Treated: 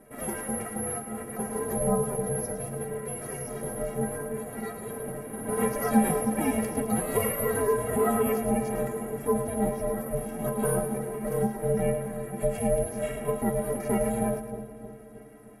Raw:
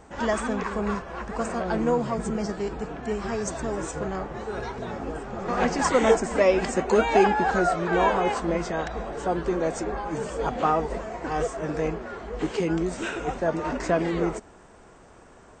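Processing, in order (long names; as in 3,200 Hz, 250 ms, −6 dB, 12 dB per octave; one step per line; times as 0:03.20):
dynamic equaliser 1,700 Hz, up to −5 dB, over −40 dBFS, Q 1.1
bad sample-rate conversion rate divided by 4×, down filtered, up zero stuff
low-pass filter 7,600 Hz 12 dB per octave
stiff-string resonator 150 Hz, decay 0.31 s, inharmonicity 0.03
ring modulation 290 Hz
octave-band graphic EQ 125/250/500/1,000/2,000/4,000 Hz +5/+9/+9/−4/+6/−5 dB
echo with a time of its own for lows and highs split 760 Hz, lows 312 ms, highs 107 ms, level −10 dB
in parallel at 0 dB: brickwall limiter −22.5 dBFS, peak gain reduction 11 dB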